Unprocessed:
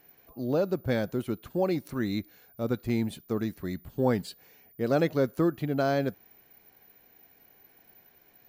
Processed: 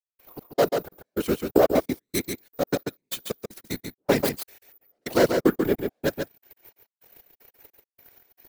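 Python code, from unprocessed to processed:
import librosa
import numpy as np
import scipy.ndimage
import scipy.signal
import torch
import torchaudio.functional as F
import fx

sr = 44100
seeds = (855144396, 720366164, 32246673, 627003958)

y = fx.tracing_dist(x, sr, depth_ms=0.33)
y = scipy.signal.sosfilt(scipy.signal.butter(2, 310.0, 'highpass', fs=sr, output='sos'), y)
y = fx.high_shelf(y, sr, hz=4100.0, db=8.0)
y = fx.leveller(y, sr, passes=2)
y = fx.step_gate(y, sr, bpm=154, pattern='..xx..x.x.', floor_db=-60.0, edge_ms=4.5)
y = fx.whisperise(y, sr, seeds[0])
y = y + 10.0 ** (-5.5 / 20.0) * np.pad(y, (int(139 * sr / 1000.0), 0))[:len(y)]
y = fx.band_squash(y, sr, depth_pct=100, at=(1.49, 1.99))
y = y * 10.0 ** (3.0 / 20.0)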